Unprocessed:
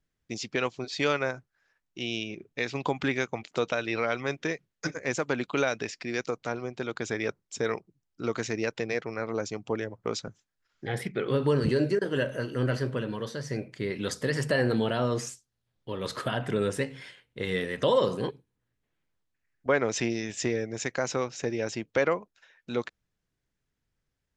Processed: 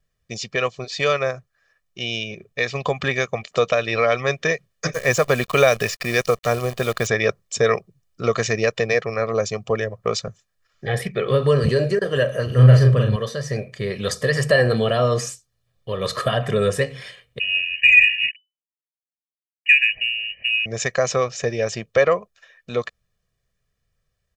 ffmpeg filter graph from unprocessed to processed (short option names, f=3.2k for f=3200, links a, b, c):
-filter_complex "[0:a]asettb=1/sr,asplit=3[a][b][c];[a]atrim=end=4.934[d];[b]atrim=start=4.93:end=7.07,asetpts=PTS-STARTPTS,afade=t=in:d=0.004:c=qsin,afade=t=out:st=2.136:d=0.004:c=qsin,equalizer=f=66:t=o:w=2:g=4.5,acrusher=bits=8:dc=4:mix=0:aa=0.000001[e];[c]atrim=start=7.066[f];[d][e]acrossfade=d=0.004:c1=hsin:c2=qsin[g];[g][f]acrossfade=d=0.004:c1=qsin:c2=hsin,asettb=1/sr,asplit=3[h][i][j];[h]atrim=end=12.464[k];[i]atrim=start=12.46:end=13.16,asetpts=PTS-STARTPTS,afade=t=in:d=0.004:c=qsin,afade=t=out:st=0.696:d=0.004:c=qsin,equalizer=f=89:t=o:w=1.6:g=11.5,asplit=2[l][m];[m]adelay=39,volume=-3.5dB[n];[l][n]amix=inputs=2:normalize=0,atrim=end_sample=30870[o];[j]atrim=start=13.156[p];[k][o]acrossfade=d=0.004:c1=hsin:c2=qsin[q];[q][p]acrossfade=d=0.004:c1=qsin:c2=hsin,asettb=1/sr,asplit=3[r][s][t];[r]atrim=end=17.394[u];[s]atrim=start=17.39:end=20.66,asetpts=PTS-STARTPTS,afade=t=in:d=0.004:c=qsin,afade=t=out:st=3.266:d=0.004:c=qsin,acrusher=bits=6:mix=0:aa=0.5,asuperstop=centerf=2000:order=12:qfactor=1.1,lowpass=f=2.6k:t=q:w=0.5098,lowpass=f=2.6k:t=q:w=0.6013,lowpass=f=2.6k:t=q:w=0.9,lowpass=f=2.6k:t=q:w=2.563,afreqshift=-3000[v];[t]atrim=start=20.656[w];[u][v]acrossfade=d=0.004:c1=hsin:c2=qsin[x];[x][w]acrossfade=d=0.004:c1=qsin:c2=hsin,acontrast=38,aecho=1:1:1.7:0.76,dynaudnorm=f=940:g=9:m=11.5dB,volume=-1dB"